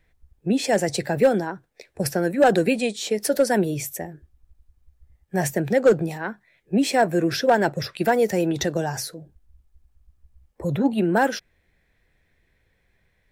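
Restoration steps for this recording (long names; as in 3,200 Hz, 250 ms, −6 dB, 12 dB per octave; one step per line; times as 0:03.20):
clipped peaks rebuilt −9.5 dBFS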